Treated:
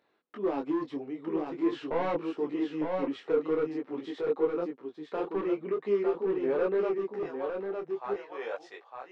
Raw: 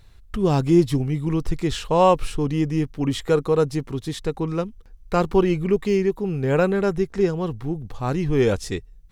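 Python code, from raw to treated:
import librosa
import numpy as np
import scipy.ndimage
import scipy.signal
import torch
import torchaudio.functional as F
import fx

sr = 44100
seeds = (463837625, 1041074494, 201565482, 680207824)

y = fx.highpass(x, sr, hz=fx.steps((0.0, 300.0), (7.23, 620.0)), slope=24)
y = np.clip(y, -10.0 ** (-19.0 / 20.0), 10.0 ** (-19.0 / 20.0))
y = fx.spacing_loss(y, sr, db_at_10k=39)
y = y + 10.0 ** (-4.5 / 20.0) * np.pad(y, (int(906 * sr / 1000.0), 0))[:len(y)]
y = fx.detune_double(y, sr, cents=16)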